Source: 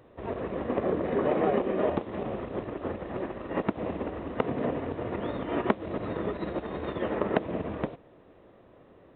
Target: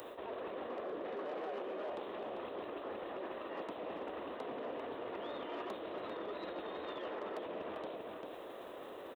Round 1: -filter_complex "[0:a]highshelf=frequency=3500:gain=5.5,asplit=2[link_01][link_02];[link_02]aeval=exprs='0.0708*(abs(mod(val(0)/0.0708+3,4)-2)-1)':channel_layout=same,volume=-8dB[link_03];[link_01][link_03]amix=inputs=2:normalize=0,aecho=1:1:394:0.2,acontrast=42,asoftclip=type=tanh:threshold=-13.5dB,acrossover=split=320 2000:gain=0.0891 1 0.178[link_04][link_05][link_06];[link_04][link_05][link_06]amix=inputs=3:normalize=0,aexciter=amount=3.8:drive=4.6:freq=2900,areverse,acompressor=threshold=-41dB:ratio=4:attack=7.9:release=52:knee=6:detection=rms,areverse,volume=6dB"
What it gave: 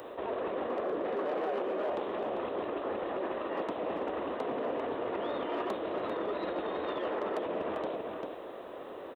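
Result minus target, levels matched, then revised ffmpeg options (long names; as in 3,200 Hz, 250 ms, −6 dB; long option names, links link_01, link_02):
downward compressor: peak gain reduction −8.5 dB; 4,000 Hz band −4.0 dB
-filter_complex "[0:a]highshelf=frequency=3500:gain=15.5,asplit=2[link_01][link_02];[link_02]aeval=exprs='0.0708*(abs(mod(val(0)/0.0708+3,4)-2)-1)':channel_layout=same,volume=-8dB[link_03];[link_01][link_03]amix=inputs=2:normalize=0,aecho=1:1:394:0.2,acontrast=42,asoftclip=type=tanh:threshold=-13.5dB,acrossover=split=320 2000:gain=0.0891 1 0.178[link_04][link_05][link_06];[link_04][link_05][link_06]amix=inputs=3:normalize=0,aexciter=amount=3.8:drive=4.6:freq=2900,areverse,acompressor=threshold=-52.5dB:ratio=4:attack=7.9:release=52:knee=6:detection=rms,areverse,volume=6dB"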